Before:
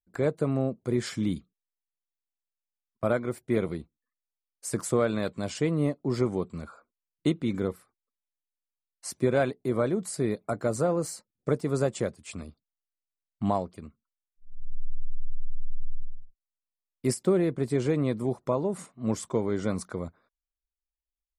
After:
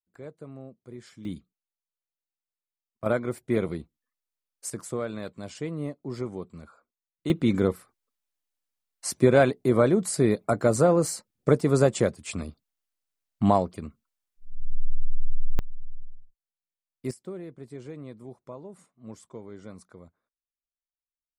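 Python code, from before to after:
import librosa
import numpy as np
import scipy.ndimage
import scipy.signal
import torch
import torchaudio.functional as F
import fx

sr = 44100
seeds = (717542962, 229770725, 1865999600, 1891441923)

y = fx.gain(x, sr, db=fx.steps((0.0, -16.0), (1.25, -5.5), (3.06, 1.0), (4.7, -6.5), (7.3, 6.0), (15.59, -5.5), (17.11, -14.5)))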